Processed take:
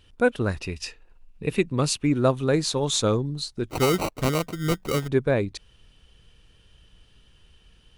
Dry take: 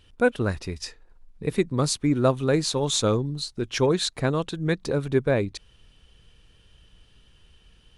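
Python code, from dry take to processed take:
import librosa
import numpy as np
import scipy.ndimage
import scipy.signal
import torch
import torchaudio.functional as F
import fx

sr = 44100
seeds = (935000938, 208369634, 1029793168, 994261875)

y = fx.peak_eq(x, sr, hz=2700.0, db=14.0, octaves=0.24, at=(0.59, 2.12))
y = fx.sample_hold(y, sr, seeds[0], rate_hz=1700.0, jitter_pct=0, at=(3.69, 5.08))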